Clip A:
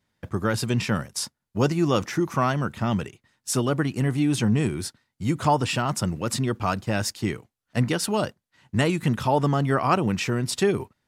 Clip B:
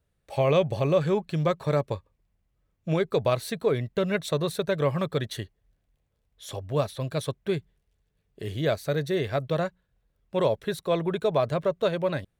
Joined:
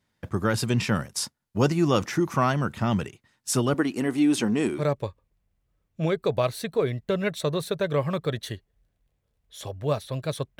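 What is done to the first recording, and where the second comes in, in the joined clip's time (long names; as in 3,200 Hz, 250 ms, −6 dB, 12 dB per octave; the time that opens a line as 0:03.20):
clip A
0:03.74–0:04.84: low shelf with overshoot 190 Hz −11.5 dB, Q 1.5
0:04.79: continue with clip B from 0:01.67, crossfade 0.10 s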